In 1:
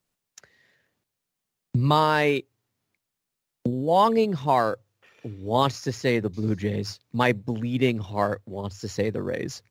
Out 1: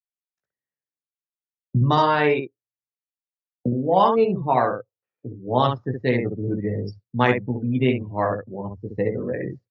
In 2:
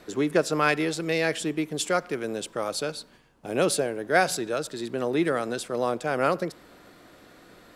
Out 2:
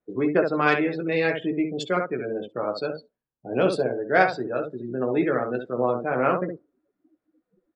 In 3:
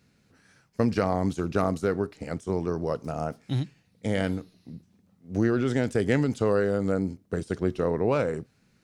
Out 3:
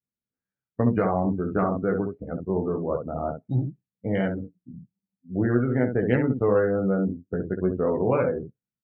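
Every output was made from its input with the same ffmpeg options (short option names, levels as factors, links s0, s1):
-af "aecho=1:1:16|67:0.596|0.596,adynamicsmooth=sensitivity=2.5:basefreq=2200,afftdn=nr=34:nf=-35"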